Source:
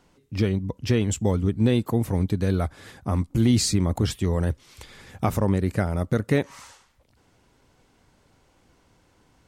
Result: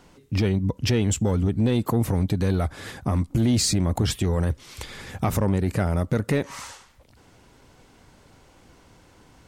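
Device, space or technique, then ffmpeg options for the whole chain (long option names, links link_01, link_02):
soft clipper into limiter: -af "asoftclip=type=tanh:threshold=-13.5dB,alimiter=limit=-22dB:level=0:latency=1:release=105,volume=7.5dB"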